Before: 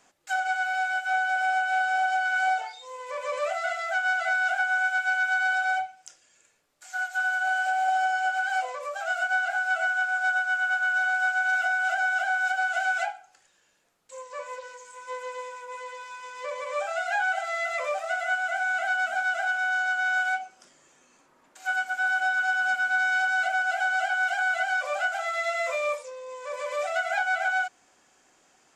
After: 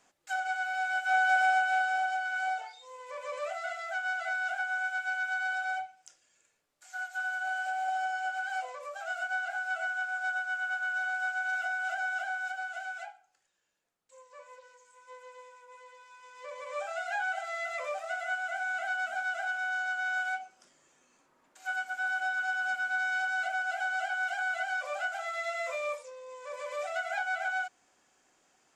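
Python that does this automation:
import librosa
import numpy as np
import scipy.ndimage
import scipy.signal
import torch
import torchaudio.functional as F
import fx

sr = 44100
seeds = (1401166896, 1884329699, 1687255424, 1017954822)

y = fx.gain(x, sr, db=fx.line((0.75, -5.5), (1.32, 1.5), (2.25, -7.5), (12.16, -7.5), (13.01, -14.0), (16.05, -14.0), (16.79, -6.5)))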